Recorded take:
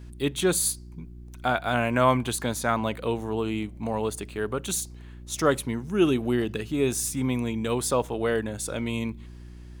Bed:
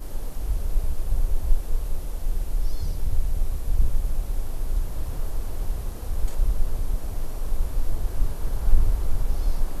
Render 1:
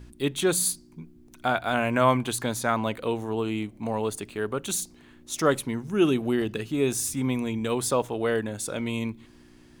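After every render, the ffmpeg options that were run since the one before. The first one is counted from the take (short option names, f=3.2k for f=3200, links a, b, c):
-af "bandreject=f=60:t=h:w=4,bandreject=f=120:t=h:w=4,bandreject=f=180:t=h:w=4"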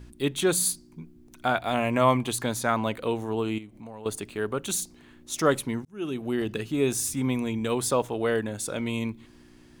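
-filter_complex "[0:a]asettb=1/sr,asplit=3[a][b][c];[a]atrim=end=1.584[d];[b]atrim=start=1.58:end=2.37,asetpts=PTS-STARTPTS,afade=t=in:d=0.004:c=qsin,afade=t=out:st=0.786:d=0.004:c=qsin,bandreject=f=1.5k:w=5.7[e];[c]atrim=start=2.366[f];[d][e]acrossfade=d=0.004:c1=hsin:c2=qsin[g];[g][f]acrossfade=d=0.004:c1=qsin:c2=hsin,asettb=1/sr,asplit=3[h][i][j];[h]atrim=end=3.584[k];[i]atrim=start=3.58:end=4.06,asetpts=PTS-STARTPTS,afade=t=in:d=0.004:c=qsin,afade=t=out:st=0.476:d=0.004:c=qsin,acompressor=threshold=-44dB:ratio=2.5:attack=3.2:release=140:knee=1:detection=peak[l];[j]atrim=start=4.056[m];[k][l]acrossfade=d=0.004:c1=hsin:c2=qsin[n];[n][m]acrossfade=d=0.004:c1=qsin:c2=hsin,asplit=2[o][p];[o]atrim=end=5.85,asetpts=PTS-STARTPTS,afade=t=out:st=5.846:d=0.004:c=hsin[q];[p]atrim=start=5.85,asetpts=PTS-STARTPTS,afade=t=in:d=0.68[r];[q][r]concat=n=2:v=0:a=1"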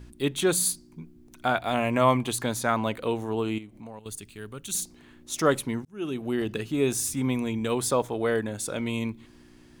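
-filter_complex "[0:a]asettb=1/sr,asplit=3[a][b][c];[a]atrim=end=3.994[d];[b]atrim=start=3.99:end=4.75,asetpts=PTS-STARTPTS,afade=t=in:d=0.004:c=qsin,afade=t=out:st=0.756:d=0.004:c=qsin,equalizer=f=680:w=0.34:g=-15[e];[c]atrim=start=4.746[f];[d][e]acrossfade=d=0.004:c1=hsin:c2=qsin[g];[g][f]acrossfade=d=0.004:c1=qsin:c2=hsin,asettb=1/sr,asplit=3[h][i][j];[h]atrim=end=7.924[k];[i]atrim=start=7.92:end=8.48,asetpts=PTS-STARTPTS,afade=t=in:d=0.004:c=qsin,afade=t=out:st=0.556:d=0.004:c=qsin,bandreject=f=2.8k:w=8.4[l];[j]atrim=start=8.476[m];[k][l]acrossfade=d=0.004:c1=hsin:c2=qsin[n];[n][m]acrossfade=d=0.004:c1=qsin:c2=hsin"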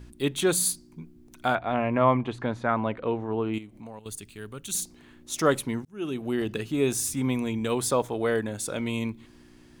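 -filter_complex "[0:a]asettb=1/sr,asplit=3[a][b][c];[a]atrim=end=1.554[d];[b]atrim=start=1.55:end=3.54,asetpts=PTS-STARTPTS,afade=t=in:d=0.004:c=qsin,afade=t=out:st=1.986:d=0.004:c=qsin,lowpass=2k[e];[c]atrim=start=3.536[f];[d][e]acrossfade=d=0.004:c1=hsin:c2=qsin[g];[g][f]acrossfade=d=0.004:c1=qsin:c2=hsin"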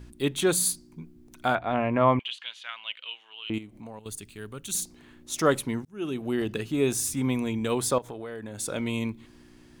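-filter_complex "[0:a]asettb=1/sr,asplit=3[a][b][c];[a]atrim=end=2.194[d];[b]atrim=start=2.19:end=3.5,asetpts=PTS-STARTPTS,afade=t=in:d=0.004:c=qsin,afade=t=out:st=1.306:d=0.004:c=qsin,highpass=f=3k:t=q:w=8.2[e];[c]atrim=start=3.496[f];[d][e]acrossfade=d=0.004:c1=hsin:c2=qsin[g];[g][f]acrossfade=d=0.004:c1=qsin:c2=hsin,asettb=1/sr,asplit=3[h][i][j];[h]atrim=end=7.984[k];[i]atrim=start=7.98:end=8.6,asetpts=PTS-STARTPTS,afade=t=in:d=0.004:c=qsin,afade=t=out:st=0.616:d=0.004:c=qsin,acompressor=threshold=-33dB:ratio=12:attack=3.2:release=140:knee=1:detection=peak[l];[j]atrim=start=8.596[m];[k][l]acrossfade=d=0.004:c1=hsin:c2=qsin[n];[n][m]acrossfade=d=0.004:c1=qsin:c2=hsin"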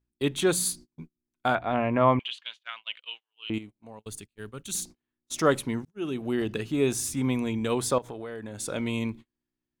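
-af "agate=range=-35dB:threshold=-40dB:ratio=16:detection=peak,highshelf=f=11k:g=-7"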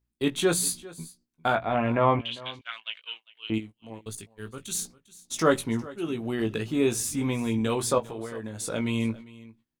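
-filter_complex "[0:a]asplit=2[a][b];[b]adelay=18,volume=-6dB[c];[a][c]amix=inputs=2:normalize=0,aecho=1:1:400:0.1"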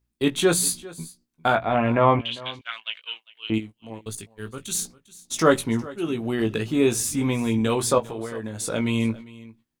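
-af "volume=4dB"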